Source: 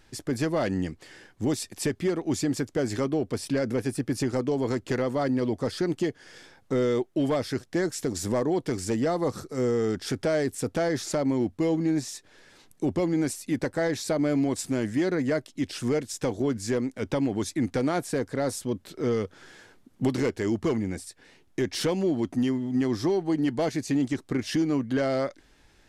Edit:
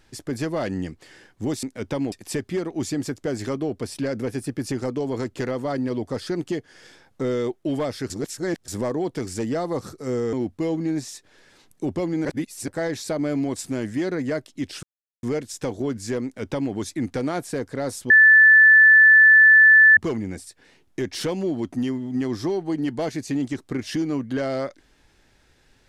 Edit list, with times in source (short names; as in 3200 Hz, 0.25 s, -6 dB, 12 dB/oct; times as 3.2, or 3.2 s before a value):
7.61–8.19 reverse
9.84–11.33 cut
13.25–13.68 reverse
15.83 insert silence 0.40 s
16.84–17.33 copy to 1.63
18.7–20.57 bleep 1750 Hz -8.5 dBFS